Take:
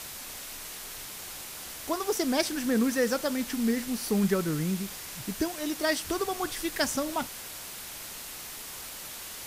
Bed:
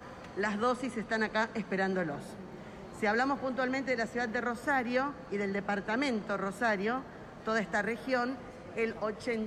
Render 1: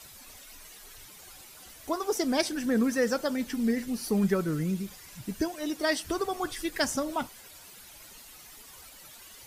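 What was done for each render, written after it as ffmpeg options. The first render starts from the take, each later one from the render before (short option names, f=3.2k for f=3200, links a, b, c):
-af "afftdn=nr=12:nf=-41"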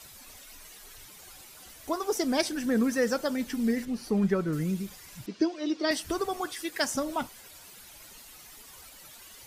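-filter_complex "[0:a]asettb=1/sr,asplit=3[a][b][c];[a]atrim=end=3.854[d];[b]atrim=start=3.85:end=4.53,asetpts=PTS-STARTPTS,afade=t=in:d=0.004:c=qsin,afade=t=out:st=0.676:d=0.004:c=qsin,aemphasis=mode=reproduction:type=50kf[e];[c]atrim=start=4.526[f];[d][e]acrossfade=d=0.004:c1=hsin:c2=qsin[g];[g][f]acrossfade=d=0.004:c1=qsin:c2=hsin,asettb=1/sr,asplit=3[h][i][j];[h]atrim=end=5.264[k];[i]atrim=start=5.26:end=5.91,asetpts=PTS-STARTPTS,afade=t=in:d=0.004:c=qsin,afade=t=out:st=0.646:d=0.004:c=qsin,highpass=260,equalizer=f=330:t=q:w=4:g=7,equalizer=f=800:t=q:w=4:g=-6,equalizer=f=1.7k:t=q:w=4:g=-5,equalizer=f=4.7k:t=q:w=4:g=3,lowpass=f=5.4k:w=0.5412,lowpass=f=5.4k:w=1.3066[l];[j]atrim=start=5.906[m];[k][l]acrossfade=d=0.004:c1=hsin:c2=qsin[n];[n][m]acrossfade=d=0.004:c1=qsin:c2=hsin,asettb=1/sr,asplit=3[o][p][q];[o]atrim=end=6.414[r];[p]atrim=start=6.41:end=6.94,asetpts=PTS-STARTPTS,afade=t=in:d=0.004:c=qsin,afade=t=out:st=0.526:d=0.004:c=qsin,highpass=f=320:p=1[s];[q]atrim=start=6.936[t];[r][s]acrossfade=d=0.004:c1=hsin:c2=qsin[u];[u][t]acrossfade=d=0.004:c1=qsin:c2=hsin"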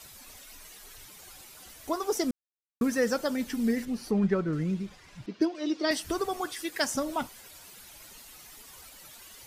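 -filter_complex "[0:a]asettb=1/sr,asplit=3[a][b][c];[a]atrim=end=4.114[d];[b]atrim=start=4.11:end=5.55,asetpts=PTS-STARTPTS,afade=t=in:d=0.004:c=qsin,afade=t=out:st=1.436:d=0.004:c=qsin,adynamicsmooth=sensitivity=7.5:basefreq=4.1k[e];[c]atrim=start=5.546[f];[d][e]acrossfade=d=0.004:c1=hsin:c2=qsin[g];[g][f]acrossfade=d=0.004:c1=qsin:c2=hsin,asplit=3[h][i][j];[h]atrim=end=2.31,asetpts=PTS-STARTPTS,afade=t=out:st=2.306:d=0.004:c=hsin[k];[i]atrim=start=2.31:end=2.81,asetpts=PTS-STARTPTS,volume=0[l];[j]atrim=start=2.81,asetpts=PTS-STARTPTS,afade=t=in:d=0.004:c=hsin[m];[k][l][m]concat=n=3:v=0:a=1"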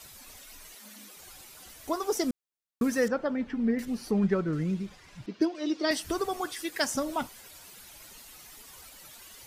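-filter_complex "[0:a]asettb=1/sr,asplit=3[a][b][c];[a]atrim=end=0.754[d];[b]atrim=start=0.75:end=1.17,asetpts=PTS-STARTPTS,afade=t=in:d=0.004:c=qsin,afade=t=out:st=0.416:d=0.004:c=qsin,afreqshift=190[e];[c]atrim=start=1.166[f];[d][e]acrossfade=d=0.004:c1=hsin:c2=qsin[g];[g][f]acrossfade=d=0.004:c1=qsin:c2=hsin,asettb=1/sr,asplit=3[h][i][j];[h]atrim=end=3.084[k];[i]atrim=start=3.08:end=3.79,asetpts=PTS-STARTPTS,afade=t=in:d=0.004:c=qsin,afade=t=out:st=0.706:d=0.004:c=qsin,lowpass=2k[l];[j]atrim=start=3.786[m];[k][l]acrossfade=d=0.004:c1=hsin:c2=qsin[n];[n][m]acrossfade=d=0.004:c1=qsin:c2=hsin"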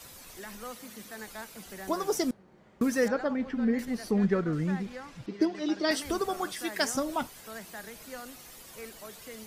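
-filter_complex "[1:a]volume=-12.5dB[a];[0:a][a]amix=inputs=2:normalize=0"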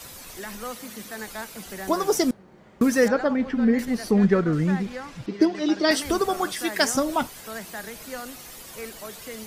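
-af "volume=7dB"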